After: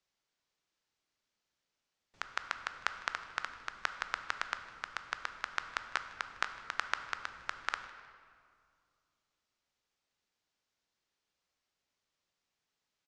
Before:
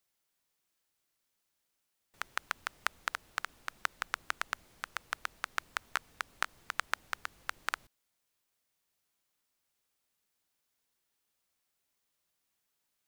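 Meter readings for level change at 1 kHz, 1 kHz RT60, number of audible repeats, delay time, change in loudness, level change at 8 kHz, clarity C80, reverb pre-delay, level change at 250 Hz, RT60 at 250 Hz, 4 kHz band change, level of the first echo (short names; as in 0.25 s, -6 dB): 0.0 dB, 2.1 s, 1, 0.155 s, -0.5 dB, -5.5 dB, 10.5 dB, 12 ms, -0.5 dB, 2.8 s, -0.5 dB, -21.5 dB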